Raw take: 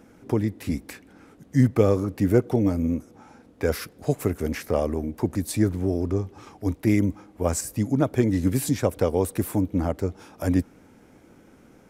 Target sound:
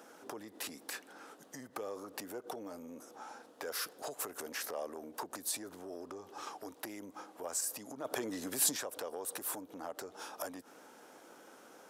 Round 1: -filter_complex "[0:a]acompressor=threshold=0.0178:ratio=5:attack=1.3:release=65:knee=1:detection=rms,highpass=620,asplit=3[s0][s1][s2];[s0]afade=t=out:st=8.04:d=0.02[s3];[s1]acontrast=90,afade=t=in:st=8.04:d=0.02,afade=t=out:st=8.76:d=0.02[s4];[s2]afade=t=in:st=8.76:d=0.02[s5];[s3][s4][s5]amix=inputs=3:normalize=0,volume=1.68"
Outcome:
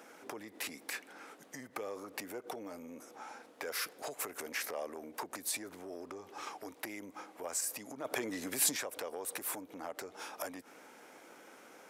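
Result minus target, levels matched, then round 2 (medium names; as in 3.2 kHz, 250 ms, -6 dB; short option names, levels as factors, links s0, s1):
2 kHz band +3.5 dB
-filter_complex "[0:a]acompressor=threshold=0.0178:ratio=5:attack=1.3:release=65:knee=1:detection=rms,highpass=620,equalizer=f=2200:w=3:g=-9,asplit=3[s0][s1][s2];[s0]afade=t=out:st=8.04:d=0.02[s3];[s1]acontrast=90,afade=t=in:st=8.04:d=0.02,afade=t=out:st=8.76:d=0.02[s4];[s2]afade=t=in:st=8.76:d=0.02[s5];[s3][s4][s5]amix=inputs=3:normalize=0,volume=1.68"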